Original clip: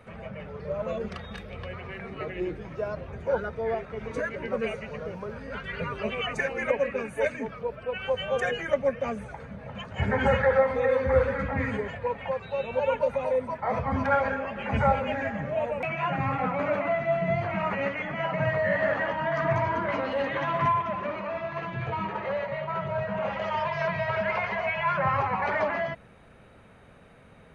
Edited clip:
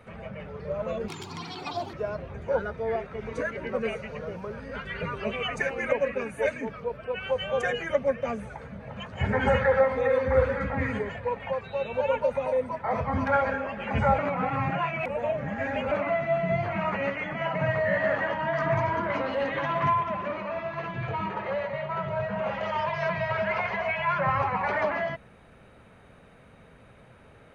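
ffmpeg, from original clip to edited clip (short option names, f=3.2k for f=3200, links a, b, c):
-filter_complex "[0:a]asplit=5[a][b][c][d][e];[a]atrim=end=1.084[f];[b]atrim=start=1.08:end=2.72,asetpts=PTS-STARTPTS,asetrate=84672,aresample=44100[g];[c]atrim=start=2.716:end=14.972[h];[d]atrim=start=14.968:end=16.702,asetpts=PTS-STARTPTS,areverse[i];[e]atrim=start=16.698[j];[f][g]acrossfade=d=0.004:c1=hsin:c2=hsin[k];[k][h]acrossfade=d=0.004:c1=hsin:c2=hsin[l];[l][i]acrossfade=d=0.004:c1=hsin:c2=hsin[m];[m][j]acrossfade=d=0.004:c1=hsin:c2=hsin"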